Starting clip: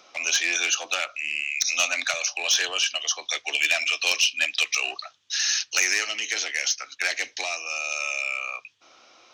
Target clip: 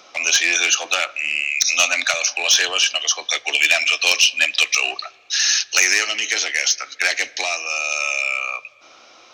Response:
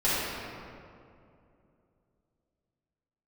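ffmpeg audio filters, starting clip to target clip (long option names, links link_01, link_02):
-filter_complex "[0:a]asplit=2[link_01][link_02];[1:a]atrim=start_sample=2205,asetrate=38367,aresample=44100,highshelf=frequency=8600:gain=-11.5[link_03];[link_02][link_03]afir=irnorm=-1:irlink=0,volume=-36dB[link_04];[link_01][link_04]amix=inputs=2:normalize=0,volume=6.5dB"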